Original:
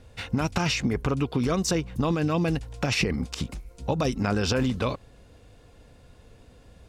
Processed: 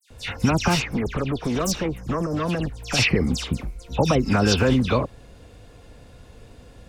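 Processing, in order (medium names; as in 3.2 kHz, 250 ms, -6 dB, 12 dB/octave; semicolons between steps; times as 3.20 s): 1.96–2.35 s: time-frequency box 1.4–5 kHz -29 dB; 0.65–2.89 s: valve stage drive 25 dB, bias 0.65; phase dispersion lows, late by 105 ms, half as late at 3 kHz; trim +6 dB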